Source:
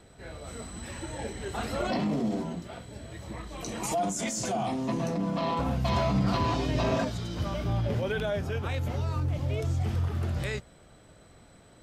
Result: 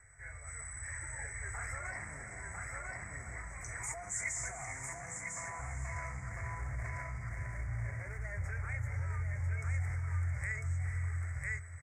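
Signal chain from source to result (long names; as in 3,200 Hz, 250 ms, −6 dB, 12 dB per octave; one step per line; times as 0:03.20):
0:06.29–0:08.44: running median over 41 samples
flat-topped bell 3,200 Hz −14.5 dB 1 octave
single-tap delay 999 ms −3.5 dB
brickwall limiter −24.5 dBFS, peak gain reduction 9 dB
drawn EQ curve 110 Hz 0 dB, 220 Hz −27 dB, 1,100 Hz −5 dB, 2,200 Hz +13 dB, 3,200 Hz −28 dB, 7,900 Hz +6 dB, 12,000 Hz −12 dB
feedback delay with all-pass diffusion 468 ms, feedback 42%, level −10 dB
level −4 dB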